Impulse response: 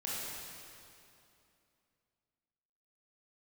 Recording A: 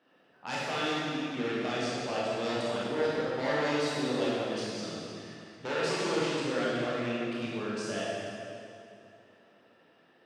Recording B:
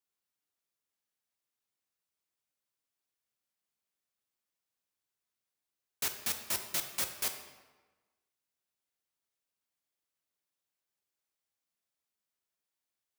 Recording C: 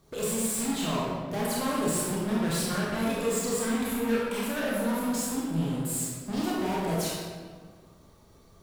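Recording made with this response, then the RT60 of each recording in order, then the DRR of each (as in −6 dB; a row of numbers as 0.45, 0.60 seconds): A; 2.7, 1.3, 1.7 seconds; −7.5, 5.5, −6.0 decibels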